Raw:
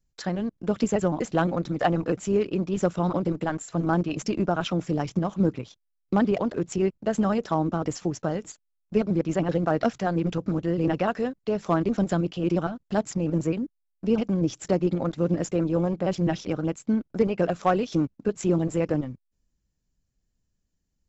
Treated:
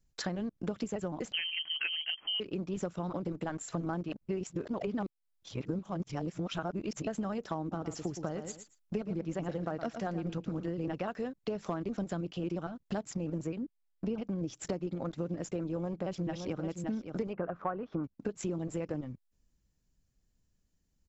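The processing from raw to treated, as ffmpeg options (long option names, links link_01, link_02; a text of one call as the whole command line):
ffmpeg -i in.wav -filter_complex "[0:a]asettb=1/sr,asplit=3[link_01][link_02][link_03];[link_01]atrim=end=1.324[link_04];[link_02]atrim=start=1.32:end=2.4,asetpts=PTS-STARTPTS,afade=type=in:duration=0.004:curve=qsin,afade=type=out:start_time=1.076:duration=0.004:curve=qsin,lowpass=frequency=2800:width_type=q:width=0.5098,lowpass=frequency=2800:width_type=q:width=0.6013,lowpass=frequency=2800:width_type=q:width=0.9,lowpass=frequency=2800:width_type=q:width=2.563,afreqshift=-3300[link_05];[link_03]atrim=start=2.396[link_06];[link_04][link_05]acrossfade=duration=0.004:curve1=hsin:curve2=qsin[link_07];[link_07][link_06]acrossfade=duration=0.004:curve1=qsin:curve2=hsin,asplit=3[link_08][link_09][link_10];[link_08]afade=type=out:start_time=7.71:duration=0.02[link_11];[link_09]aecho=1:1:115|230:0.282|0.0451,afade=type=in:start_time=7.71:duration=0.02,afade=type=out:start_time=10.68:duration=0.02[link_12];[link_10]afade=type=in:start_time=10.68:duration=0.02[link_13];[link_11][link_12][link_13]amix=inputs=3:normalize=0,asettb=1/sr,asplit=3[link_14][link_15][link_16];[link_14]atrim=end=13.574[link_17];[link_15]atrim=start=13.57:end=14.39,asetpts=PTS-STARTPTS,afade=type=in:duration=0.004:curve=qsin,afade=type=out:start_time=0.816:duration=0.004:curve=qsin,highshelf=frequency=6300:gain=-9[link_18];[link_16]atrim=start=14.386[link_19];[link_17][link_18]acrossfade=duration=0.004:curve1=hsin:curve2=qsin[link_20];[link_20][link_19]acrossfade=duration=0.004:curve1=qsin:curve2=hsin,asplit=2[link_21][link_22];[link_22]afade=type=in:start_time=15.61:duration=0.01,afade=type=out:start_time=16.6:duration=0.01,aecho=0:1:570|1140:0.298538|0.0298538[link_23];[link_21][link_23]amix=inputs=2:normalize=0,asettb=1/sr,asplit=3[link_24][link_25][link_26];[link_24]atrim=end=17.334[link_27];[link_25]atrim=start=17.33:end=18.04,asetpts=PTS-STARTPTS,afade=type=in:duration=0.004:curve=qsin,afade=type=out:start_time=0.706:duration=0.004:curve=qsin,lowpass=frequency=1300:width_type=q:width=2.2[link_28];[link_26]atrim=start=18.036[link_29];[link_27][link_28]acrossfade=duration=0.004:curve1=hsin:curve2=qsin[link_30];[link_30][link_29]acrossfade=duration=0.004:curve1=qsin:curve2=hsin,asplit=3[link_31][link_32][link_33];[link_31]atrim=end=4.122[link_34];[link_32]atrim=start=4.118:end=7.072,asetpts=PTS-STARTPTS,areverse[link_35];[link_33]atrim=start=7.068[link_36];[link_34][link_35]acrossfade=duration=0.004:curve1=hsin:curve2=hsin[link_37];[link_37][link_36]acrossfade=duration=0.004:curve1=hsin:curve2=hsin,acompressor=threshold=-34dB:ratio=6,volume=1dB" out.wav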